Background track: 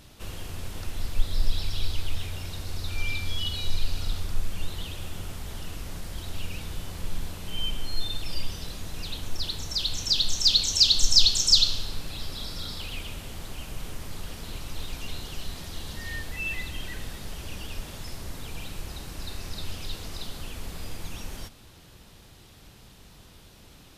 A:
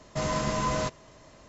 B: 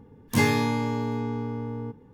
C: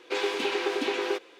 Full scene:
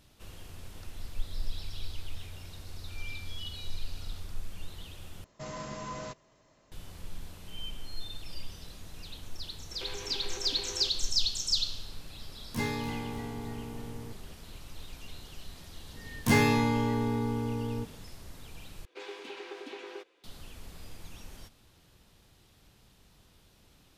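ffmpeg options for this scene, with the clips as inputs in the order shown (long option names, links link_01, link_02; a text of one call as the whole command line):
ffmpeg -i bed.wav -i cue0.wav -i cue1.wav -i cue2.wav -filter_complex "[3:a]asplit=2[link_01][link_02];[2:a]asplit=2[link_03][link_04];[0:a]volume=-10dB[link_05];[1:a]equalizer=frequency=62:width_type=o:width=0.77:gain=-7[link_06];[link_01]acompressor=threshold=-40dB:ratio=6:attack=3.2:release=140:knee=1:detection=peak[link_07];[link_03]asplit=7[link_08][link_09][link_10][link_11][link_12][link_13][link_14];[link_09]adelay=294,afreqshift=-71,volume=-11.5dB[link_15];[link_10]adelay=588,afreqshift=-142,volume=-16.9dB[link_16];[link_11]adelay=882,afreqshift=-213,volume=-22.2dB[link_17];[link_12]adelay=1176,afreqshift=-284,volume=-27.6dB[link_18];[link_13]adelay=1470,afreqshift=-355,volume=-32.9dB[link_19];[link_14]adelay=1764,afreqshift=-426,volume=-38.3dB[link_20];[link_08][link_15][link_16][link_17][link_18][link_19][link_20]amix=inputs=7:normalize=0[link_21];[link_04]volume=15dB,asoftclip=hard,volume=-15dB[link_22];[link_05]asplit=3[link_23][link_24][link_25];[link_23]atrim=end=5.244[link_26];[link_06]atrim=end=1.48,asetpts=PTS-STARTPTS,volume=-11.5dB[link_27];[link_24]atrim=start=6.716:end=18.854[link_28];[link_02]atrim=end=1.39,asetpts=PTS-STARTPTS,volume=-15dB[link_29];[link_25]atrim=start=20.236[link_30];[link_07]atrim=end=1.39,asetpts=PTS-STARTPTS,volume=-1dB,afade=type=in:duration=0.004:curve=hsin,afade=type=out:start_time=1.386:duration=0.004:curve=hsin,adelay=9710[link_31];[link_21]atrim=end=2.13,asetpts=PTS-STARTPTS,volume=-11dB,afade=type=in:duration=0.004:curve=hsin,afade=type=out:start_time=2.126:duration=0.004:curve=hsin,adelay=12210[link_32];[link_22]atrim=end=2.13,asetpts=PTS-STARTPTS,volume=-1dB,afade=type=in:duration=0.004:curve=hsin,afade=type=out:start_time=2.126:duration=0.004:curve=hsin,adelay=15930[link_33];[link_26][link_27]acrossfade=duration=0.004:curve1=hsin:curve2=hsin[link_34];[link_34][link_28]acrossfade=duration=0.004:curve1=hsin:curve2=hsin[link_35];[link_35][link_29]acrossfade=duration=0.004:curve1=hsin:curve2=hsin[link_36];[link_36][link_30]acrossfade=duration=0.004:curve1=hsin:curve2=hsin[link_37];[link_37][link_31][link_32][link_33]amix=inputs=4:normalize=0" out.wav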